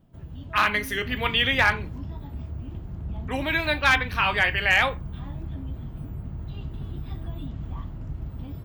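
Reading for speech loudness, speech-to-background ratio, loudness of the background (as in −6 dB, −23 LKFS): −22.5 LKFS, 13.5 dB, −36.0 LKFS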